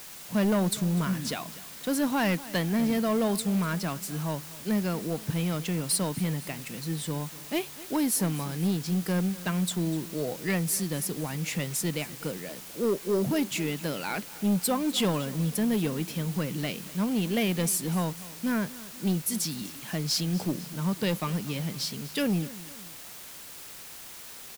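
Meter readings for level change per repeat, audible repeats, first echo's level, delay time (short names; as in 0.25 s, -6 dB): -5.5 dB, 2, -18.5 dB, 0.247 s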